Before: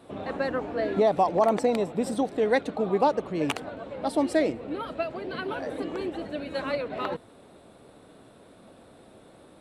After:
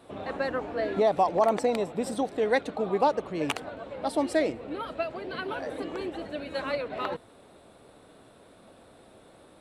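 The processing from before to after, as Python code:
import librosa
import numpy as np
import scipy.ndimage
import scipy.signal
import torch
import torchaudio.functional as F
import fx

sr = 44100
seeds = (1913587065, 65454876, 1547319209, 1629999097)

y = fx.peak_eq(x, sr, hz=200.0, db=-4.0, octaves=2.2)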